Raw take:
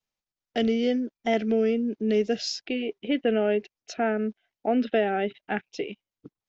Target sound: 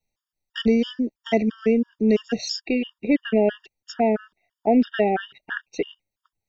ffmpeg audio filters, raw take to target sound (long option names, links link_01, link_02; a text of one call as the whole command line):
ffmpeg -i in.wav -af "lowshelf=frequency=100:gain=10.5,acontrast=40,afftfilt=real='re*gt(sin(2*PI*3*pts/sr)*(1-2*mod(floor(b*sr/1024/930),2)),0)':imag='im*gt(sin(2*PI*3*pts/sr)*(1-2*mod(floor(b*sr/1024/930),2)),0)':win_size=1024:overlap=0.75" out.wav